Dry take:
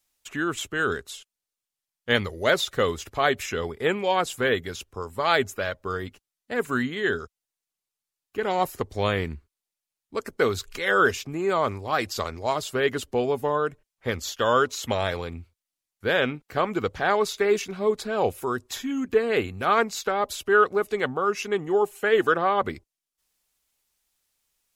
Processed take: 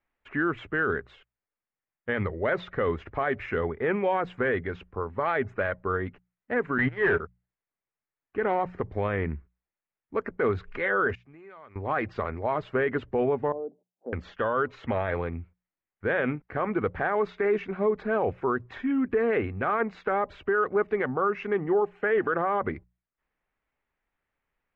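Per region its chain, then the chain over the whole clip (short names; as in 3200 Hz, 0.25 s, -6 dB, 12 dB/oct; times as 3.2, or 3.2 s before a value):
6.78–7.2 gate -29 dBFS, range -19 dB + bell 230 Hz -14 dB 0.39 oct + sample leveller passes 3
11.15–11.76 pre-emphasis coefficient 0.9 + compressor 3:1, threshold -48 dBFS
13.52–14.13 Chebyshev band-pass 190–800 Hz, order 4 + compressor 1.5:1, threshold -49 dBFS
whole clip: Chebyshev low-pass 2000 Hz, order 3; notches 60/120/180 Hz; limiter -19 dBFS; gain +2.5 dB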